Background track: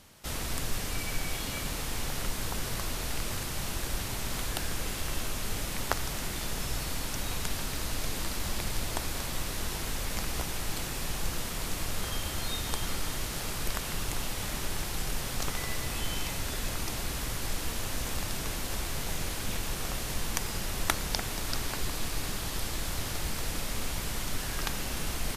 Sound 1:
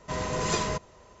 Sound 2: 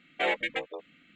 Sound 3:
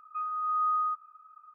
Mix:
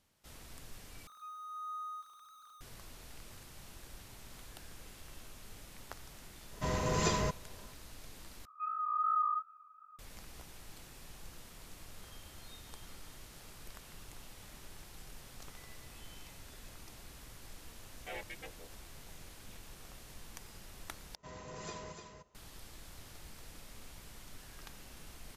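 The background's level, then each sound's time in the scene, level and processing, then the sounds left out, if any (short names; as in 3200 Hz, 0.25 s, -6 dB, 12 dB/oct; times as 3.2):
background track -18.5 dB
1.07 replace with 3 -16 dB + zero-crossing step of -37.5 dBFS
6.53 add 1 -4.5 dB + low shelf 210 Hz +5 dB
8.45 replace with 3 -1.5 dB + chorus 2.7 Hz, delay 17.5 ms, depth 5.7 ms
17.87 add 2 -17 dB
21.15 replace with 1 -18 dB + echo 0.298 s -6.5 dB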